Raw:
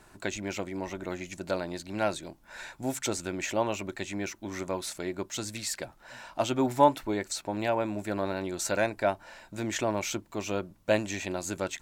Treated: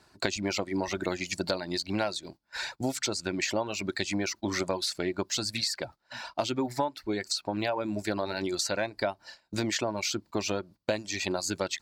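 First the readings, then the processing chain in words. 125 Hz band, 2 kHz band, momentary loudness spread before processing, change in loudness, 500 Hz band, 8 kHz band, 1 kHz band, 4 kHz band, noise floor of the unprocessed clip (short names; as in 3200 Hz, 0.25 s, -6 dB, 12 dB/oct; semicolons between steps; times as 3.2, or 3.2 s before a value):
0.0 dB, +1.5 dB, 10 LU, 0.0 dB, -1.5 dB, +1.5 dB, -4.0 dB, +7.0 dB, -58 dBFS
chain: gate -46 dBFS, range -16 dB; reverb removal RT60 1 s; HPF 54 Hz; vocal rider 2 s; bell 4600 Hz +13 dB 0.52 oct; compressor 10:1, threshold -32 dBFS, peak gain reduction 17 dB; high shelf 6200 Hz -5 dB; gain +6.5 dB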